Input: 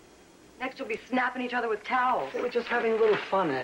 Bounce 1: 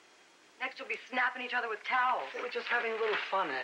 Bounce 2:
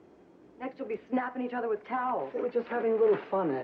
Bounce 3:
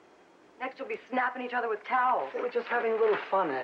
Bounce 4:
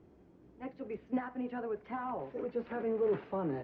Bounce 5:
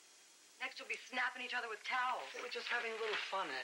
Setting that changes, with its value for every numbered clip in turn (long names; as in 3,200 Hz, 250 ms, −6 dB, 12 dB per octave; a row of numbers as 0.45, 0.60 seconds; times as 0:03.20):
resonant band-pass, frequency: 2,500, 300, 880, 110, 7,000 Hertz